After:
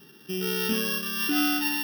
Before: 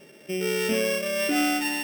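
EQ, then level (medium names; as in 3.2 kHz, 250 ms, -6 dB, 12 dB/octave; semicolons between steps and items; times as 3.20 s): treble shelf 6.3 kHz +7.5 dB; static phaser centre 2.2 kHz, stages 6; +2.0 dB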